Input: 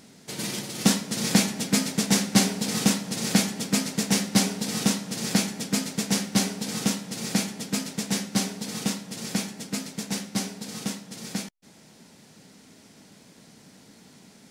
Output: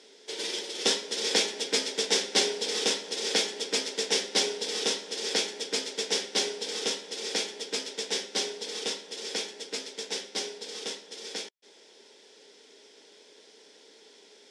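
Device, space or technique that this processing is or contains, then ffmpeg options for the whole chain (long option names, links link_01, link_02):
phone speaker on a table: -af "highpass=frequency=390:width=0.5412,highpass=frequency=390:width=1.3066,equalizer=frequency=420:width_type=q:width=4:gain=9,equalizer=frequency=700:width_type=q:width=4:gain=-7,equalizer=frequency=1200:width_type=q:width=4:gain=-9,equalizer=frequency=3400:width_type=q:width=4:gain=10,equalizer=frequency=5300:width_type=q:width=4:gain=8,lowpass=frequency=8600:width=0.5412,lowpass=frequency=8600:width=1.3066,equalizer=frequency=6000:width=0.56:gain=-6"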